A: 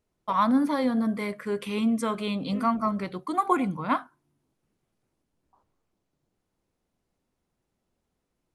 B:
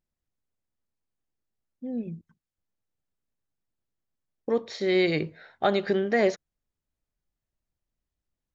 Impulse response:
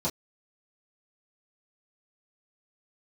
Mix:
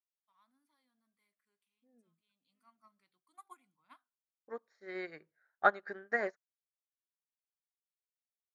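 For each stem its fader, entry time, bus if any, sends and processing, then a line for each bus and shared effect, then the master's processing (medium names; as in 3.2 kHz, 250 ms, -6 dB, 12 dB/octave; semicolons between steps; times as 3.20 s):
1.98 s -19 dB -> 2.43 s -11.5 dB, 0.00 s, no send, peaking EQ 500 Hz -9 dB 0.65 oct; auto duck -12 dB, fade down 0.30 s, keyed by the second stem
-2.5 dB, 0.00 s, no send, resonant high shelf 2.2 kHz -12 dB, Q 3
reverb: none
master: tilt EQ +4 dB/octave; upward expansion 2.5:1, over -40 dBFS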